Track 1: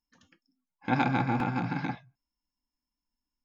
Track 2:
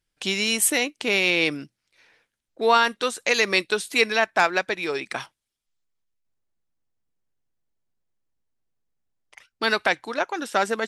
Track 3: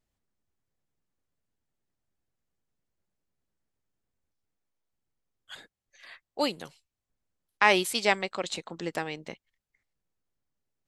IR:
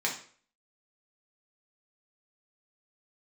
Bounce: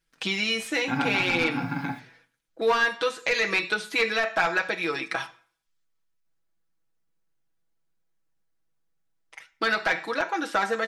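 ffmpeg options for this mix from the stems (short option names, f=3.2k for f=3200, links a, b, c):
-filter_complex "[0:a]aecho=1:1:7.1:0.58,acrusher=bits=8:mix=0:aa=0.5,volume=-1.5dB,asplit=2[a][b];[b]volume=-14.5dB[c];[1:a]aecho=1:1:6.1:0.75,volume=-1.5dB,asplit=2[d][e];[e]volume=-16.5dB[f];[a][d]amix=inputs=2:normalize=0,aeval=exprs='0.224*(abs(mod(val(0)/0.224+3,4)-2)-1)':c=same,acompressor=threshold=-27dB:ratio=4,volume=0dB[g];[3:a]atrim=start_sample=2205[h];[c][f]amix=inputs=2:normalize=0[i];[i][h]afir=irnorm=-1:irlink=0[j];[g][j]amix=inputs=2:normalize=0,acrossover=split=5300[k][l];[l]acompressor=threshold=-47dB:ratio=4:attack=1:release=60[m];[k][m]amix=inputs=2:normalize=0,equalizer=f=1.4k:w=3.4:g=4.5"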